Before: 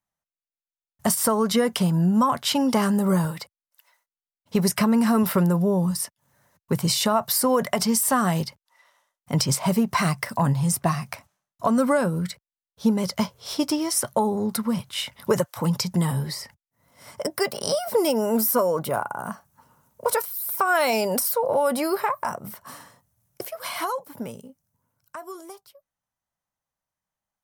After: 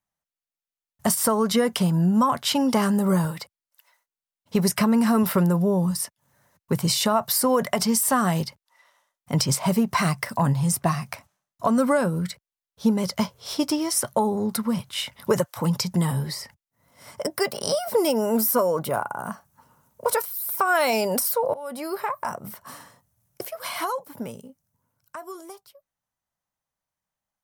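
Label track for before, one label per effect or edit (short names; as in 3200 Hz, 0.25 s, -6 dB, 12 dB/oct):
21.540000	22.720000	fade in equal-power, from -20.5 dB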